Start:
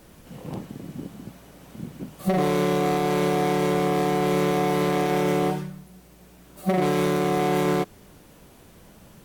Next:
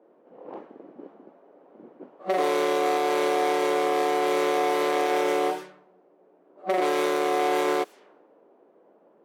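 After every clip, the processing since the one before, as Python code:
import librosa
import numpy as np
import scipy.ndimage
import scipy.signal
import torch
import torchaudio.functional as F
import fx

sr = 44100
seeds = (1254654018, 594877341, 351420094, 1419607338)

y = scipy.signal.sosfilt(scipy.signal.butter(4, 360.0, 'highpass', fs=sr, output='sos'), x)
y = fx.env_lowpass(y, sr, base_hz=530.0, full_db=-25.5)
y = fx.high_shelf(y, sr, hz=10000.0, db=-6.5)
y = F.gain(torch.from_numpy(y), 1.0).numpy()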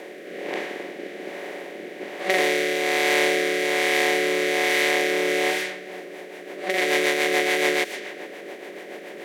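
y = fx.bin_compress(x, sr, power=0.4)
y = fx.rotary_switch(y, sr, hz=1.2, then_hz=7.0, switch_at_s=5.51)
y = fx.high_shelf_res(y, sr, hz=1500.0, db=6.5, q=3.0)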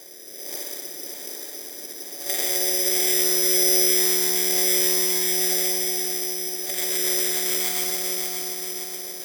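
y = fx.echo_feedback(x, sr, ms=578, feedback_pct=52, wet_db=-6.5)
y = fx.rev_spring(y, sr, rt60_s=2.8, pass_ms=(60,), chirp_ms=75, drr_db=0.5)
y = (np.kron(scipy.signal.resample_poly(y, 1, 8), np.eye(8)[0]) * 8)[:len(y)]
y = F.gain(torch.from_numpy(y), -14.0).numpy()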